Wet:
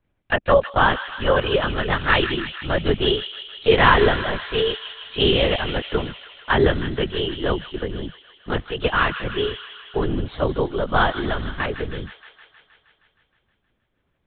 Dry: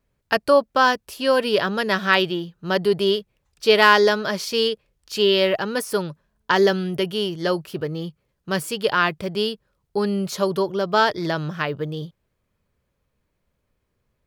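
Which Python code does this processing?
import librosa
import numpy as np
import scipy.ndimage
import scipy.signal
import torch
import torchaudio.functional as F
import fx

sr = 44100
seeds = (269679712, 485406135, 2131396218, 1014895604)

y = fx.lpc_vocoder(x, sr, seeds[0], excitation='whisper', order=10)
y = fx.echo_wet_highpass(y, sr, ms=157, feedback_pct=69, hz=1700.0, wet_db=-8.0)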